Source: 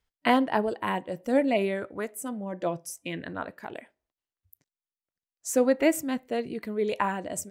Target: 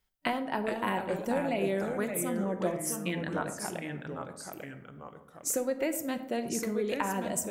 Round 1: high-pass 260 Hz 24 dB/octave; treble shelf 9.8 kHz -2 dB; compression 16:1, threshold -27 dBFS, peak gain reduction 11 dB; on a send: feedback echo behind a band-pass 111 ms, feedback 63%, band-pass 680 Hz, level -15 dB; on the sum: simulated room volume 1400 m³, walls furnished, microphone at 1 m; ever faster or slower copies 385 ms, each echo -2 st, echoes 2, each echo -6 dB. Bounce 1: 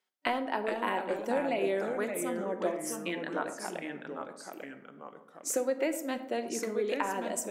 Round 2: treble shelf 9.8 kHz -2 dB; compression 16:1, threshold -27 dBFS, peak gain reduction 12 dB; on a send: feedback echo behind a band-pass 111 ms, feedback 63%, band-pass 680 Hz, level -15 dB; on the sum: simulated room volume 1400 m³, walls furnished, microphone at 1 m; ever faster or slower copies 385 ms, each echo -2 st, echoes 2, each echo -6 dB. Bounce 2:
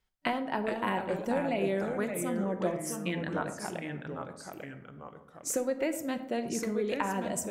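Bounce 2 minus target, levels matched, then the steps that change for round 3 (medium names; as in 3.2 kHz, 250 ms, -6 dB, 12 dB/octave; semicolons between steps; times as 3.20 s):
8 kHz band -3.0 dB
change: treble shelf 9.8 kHz +9 dB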